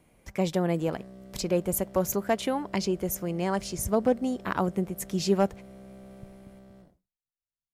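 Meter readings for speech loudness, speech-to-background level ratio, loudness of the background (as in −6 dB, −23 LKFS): −28.5 LKFS, 20.0 dB, −48.5 LKFS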